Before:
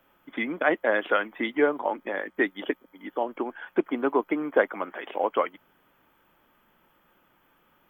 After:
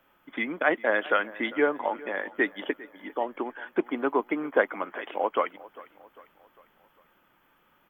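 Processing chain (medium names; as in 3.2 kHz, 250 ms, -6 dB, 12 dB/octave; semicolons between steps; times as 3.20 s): peaking EQ 1.8 kHz +3 dB 2.6 oct; on a send: feedback delay 400 ms, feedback 49%, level -20 dB; on the sum: trim -2.5 dB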